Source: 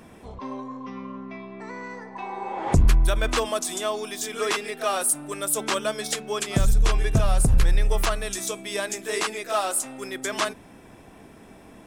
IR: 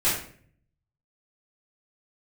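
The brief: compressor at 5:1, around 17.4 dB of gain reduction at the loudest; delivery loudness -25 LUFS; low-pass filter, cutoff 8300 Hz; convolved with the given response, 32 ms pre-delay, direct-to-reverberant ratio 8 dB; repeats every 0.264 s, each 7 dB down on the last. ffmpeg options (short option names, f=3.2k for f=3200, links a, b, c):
-filter_complex "[0:a]lowpass=8.3k,acompressor=threshold=-34dB:ratio=5,aecho=1:1:264|528|792|1056|1320:0.447|0.201|0.0905|0.0407|0.0183,asplit=2[a][b];[1:a]atrim=start_sample=2205,adelay=32[c];[b][c]afir=irnorm=-1:irlink=0,volume=-21.5dB[d];[a][d]amix=inputs=2:normalize=0,volume=11dB"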